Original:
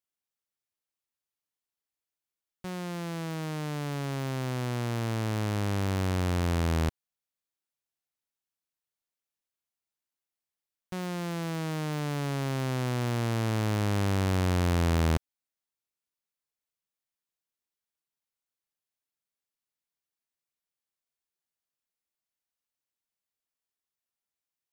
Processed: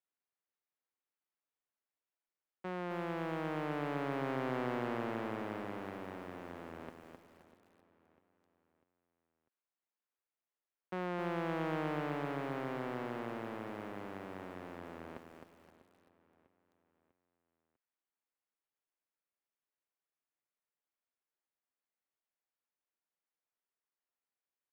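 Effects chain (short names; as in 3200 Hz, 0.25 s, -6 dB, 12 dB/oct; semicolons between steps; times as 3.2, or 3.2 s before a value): half-wave gain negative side -3 dB; limiter -23 dBFS, peak gain reduction 3.5 dB; negative-ratio compressor -33 dBFS, ratio -0.5; three-band isolator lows -22 dB, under 210 Hz, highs -23 dB, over 2600 Hz; feedback echo 0.647 s, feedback 47%, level -17.5 dB; lo-fi delay 0.261 s, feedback 35%, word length 10-bit, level -6 dB; gain -1.5 dB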